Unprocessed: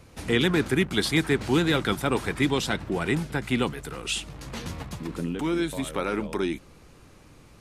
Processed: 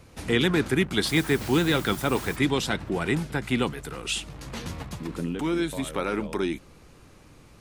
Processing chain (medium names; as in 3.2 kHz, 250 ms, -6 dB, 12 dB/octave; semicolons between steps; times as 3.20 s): 1.06–2.35 s: added noise white -43 dBFS